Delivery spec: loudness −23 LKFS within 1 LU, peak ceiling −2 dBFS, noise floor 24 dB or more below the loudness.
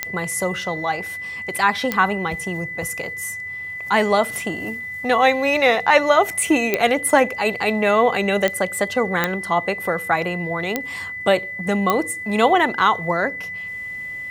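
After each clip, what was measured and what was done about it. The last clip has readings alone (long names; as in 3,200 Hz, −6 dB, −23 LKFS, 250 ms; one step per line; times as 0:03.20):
number of clicks 7; interfering tone 2,000 Hz; level of the tone −28 dBFS; integrated loudness −20.0 LKFS; sample peak −1.5 dBFS; target loudness −23.0 LKFS
→ click removal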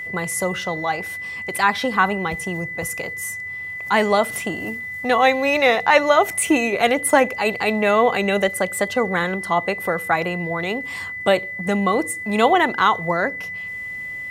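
number of clicks 0; interfering tone 2,000 Hz; level of the tone −28 dBFS
→ notch filter 2,000 Hz, Q 30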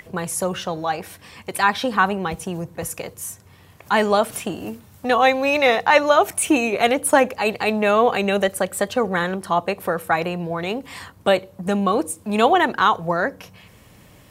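interfering tone none found; integrated loudness −20.5 LKFS; sample peak −1.5 dBFS; target loudness −23.0 LKFS
→ level −2.5 dB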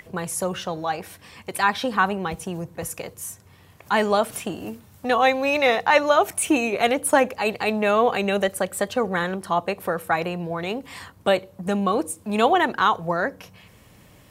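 integrated loudness −23.0 LKFS; sample peak −4.0 dBFS; background noise floor −52 dBFS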